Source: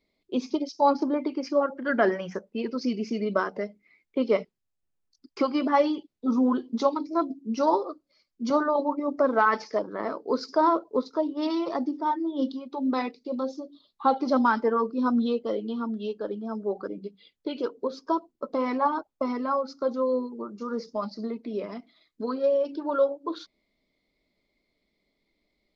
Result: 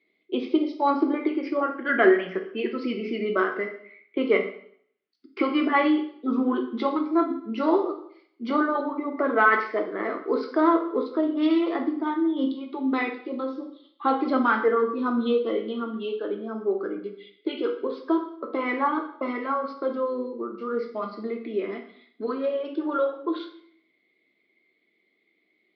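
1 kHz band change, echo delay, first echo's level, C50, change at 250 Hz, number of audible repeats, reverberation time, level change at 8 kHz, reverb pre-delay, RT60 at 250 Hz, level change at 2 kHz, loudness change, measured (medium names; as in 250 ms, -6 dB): 0.0 dB, no echo, no echo, 9.0 dB, +2.5 dB, no echo, 0.65 s, no reading, 5 ms, 0.65 s, +7.0 dB, +1.5 dB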